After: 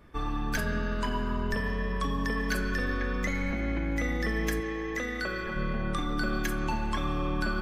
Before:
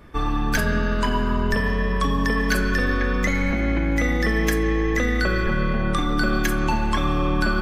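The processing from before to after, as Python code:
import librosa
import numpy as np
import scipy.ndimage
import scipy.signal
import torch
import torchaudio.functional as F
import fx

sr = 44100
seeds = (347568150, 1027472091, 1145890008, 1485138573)

y = fx.low_shelf(x, sr, hz=190.0, db=-11.0, at=(4.6, 5.56))
y = y * librosa.db_to_amplitude(-8.5)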